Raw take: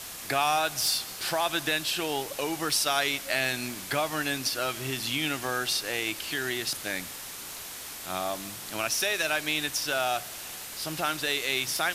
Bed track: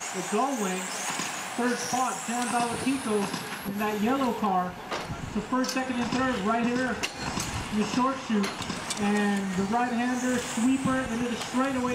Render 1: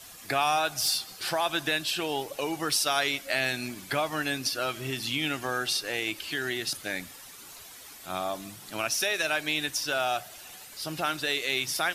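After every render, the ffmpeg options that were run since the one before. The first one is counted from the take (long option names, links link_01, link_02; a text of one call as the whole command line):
ffmpeg -i in.wav -af "afftdn=noise_reduction=10:noise_floor=-41" out.wav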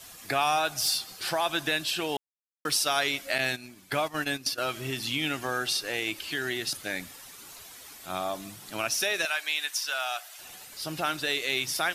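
ffmpeg -i in.wav -filter_complex "[0:a]asettb=1/sr,asplit=3[link_01][link_02][link_03];[link_01]atrim=end=3.384[link_04];[link_02]atrim=start=3.38:end=4.58,asetpts=PTS-STARTPTS,afade=type=in:duration=0.004:curve=qsin,afade=type=out:start_time=1.196:duration=0.004:curve=qsin,agate=range=-11dB:threshold=-33dB:ratio=16:release=100:detection=peak[link_05];[link_03]atrim=start=4.576[link_06];[link_04][link_05]acrossfade=duration=0.004:curve1=hsin:curve2=qsin[link_07];[link_07][link_06]acrossfade=duration=0.004:curve1=qsin:curve2=hsin,asettb=1/sr,asplit=3[link_08][link_09][link_10];[link_08]atrim=end=9.254[link_11];[link_09]atrim=start=9.25:end=10.39,asetpts=PTS-STARTPTS,afade=type=in:duration=0.004:curve=qsin,afade=type=out:start_time=1.136:duration=0.004:curve=qsin,highpass=990[link_12];[link_10]atrim=start=10.386[link_13];[link_11][link_12]acrossfade=duration=0.004:curve1=hsin:curve2=qsin[link_14];[link_14][link_13]acrossfade=duration=0.004:curve1=qsin:curve2=hsin,asplit=3[link_15][link_16][link_17];[link_15]atrim=end=2.17,asetpts=PTS-STARTPTS,afade=type=out:start_time=2.166:duration=0.004:curve=hsin[link_18];[link_16]atrim=start=2.17:end=2.65,asetpts=PTS-STARTPTS,volume=0[link_19];[link_17]atrim=start=2.65,asetpts=PTS-STARTPTS,afade=type=in:duration=0.004:curve=hsin[link_20];[link_18][link_19][link_20]concat=n=3:v=0:a=1" out.wav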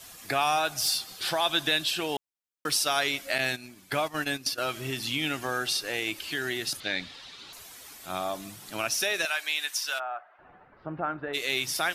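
ffmpeg -i in.wav -filter_complex "[0:a]asettb=1/sr,asplit=3[link_01][link_02][link_03];[link_01]atrim=end=1.114[link_04];[link_02]atrim=start=1.11:end=1.89,asetpts=PTS-STARTPTS,afade=type=in:duration=0.004:curve=qsin,afade=type=out:start_time=0.776:duration=0.004:curve=qsin,equalizer=frequency=3500:width_type=o:width=0.35:gain=7[link_05];[link_03]atrim=start=1.886[link_06];[link_04][link_05]acrossfade=duration=0.004:curve1=hsin:curve2=qsin[link_07];[link_07][link_06]acrossfade=duration=0.004:curve1=qsin:curve2=hsin,asettb=1/sr,asplit=3[link_08][link_09][link_10];[link_08]atrim=end=6.804[link_11];[link_09]atrim=start=6.8:end=7.53,asetpts=PTS-STARTPTS,afade=type=in:duration=0.004:curve=qsin,afade=type=out:start_time=0.726:duration=0.004:curve=qsin,lowpass=frequency=3900:width_type=q:width=2.9[link_12];[link_10]atrim=start=7.526[link_13];[link_11][link_12]acrossfade=duration=0.004:curve1=hsin:curve2=qsin[link_14];[link_14][link_13]acrossfade=duration=0.004:curve1=qsin:curve2=hsin,asplit=3[link_15][link_16][link_17];[link_15]afade=type=out:start_time=9.98:duration=0.02[link_18];[link_16]lowpass=frequency=1500:width=0.5412,lowpass=frequency=1500:width=1.3066,afade=type=in:start_time=9.98:duration=0.02,afade=type=out:start_time=11.33:duration=0.02[link_19];[link_17]afade=type=in:start_time=11.33:duration=0.02[link_20];[link_18][link_19][link_20]amix=inputs=3:normalize=0" out.wav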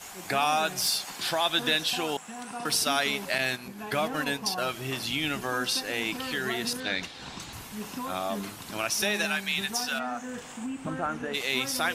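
ffmpeg -i in.wav -i bed.wav -filter_complex "[1:a]volume=-11dB[link_01];[0:a][link_01]amix=inputs=2:normalize=0" out.wav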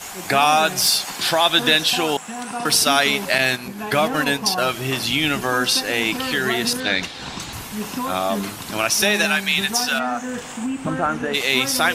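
ffmpeg -i in.wav -af "volume=9.5dB" out.wav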